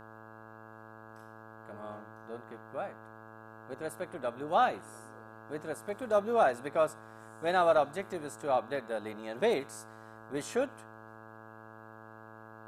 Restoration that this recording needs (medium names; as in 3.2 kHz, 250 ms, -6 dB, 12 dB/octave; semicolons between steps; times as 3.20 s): de-hum 110.5 Hz, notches 15